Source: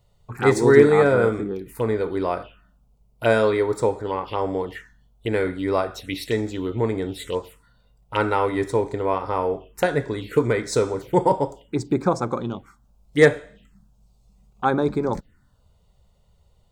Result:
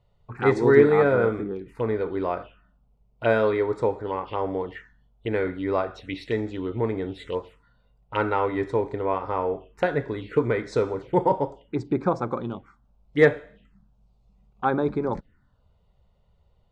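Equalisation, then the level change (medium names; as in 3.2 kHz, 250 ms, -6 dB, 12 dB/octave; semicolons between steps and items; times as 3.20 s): low-pass 5.8 kHz 12 dB/octave; tone controls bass -1 dB, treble -11 dB; -2.5 dB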